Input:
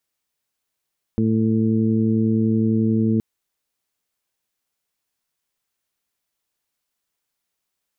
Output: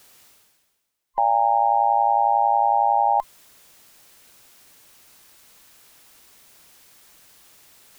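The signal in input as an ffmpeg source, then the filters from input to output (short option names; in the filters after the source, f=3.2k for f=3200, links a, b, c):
-f lavfi -i "aevalsrc='0.0794*sin(2*PI*111*t)+0.133*sin(2*PI*222*t)+0.0562*sin(2*PI*333*t)+0.0355*sin(2*PI*444*t)':d=2.02:s=44100"
-af "afftfilt=real='real(if(between(b,1,1008),(2*floor((b-1)/48)+1)*48-b,b),0)':imag='imag(if(between(b,1,1008),(2*floor((b-1)/48)+1)*48-b,b),0)*if(between(b,1,1008),-1,1)':win_size=2048:overlap=0.75,areverse,acompressor=mode=upward:threshold=-30dB:ratio=2.5,areverse"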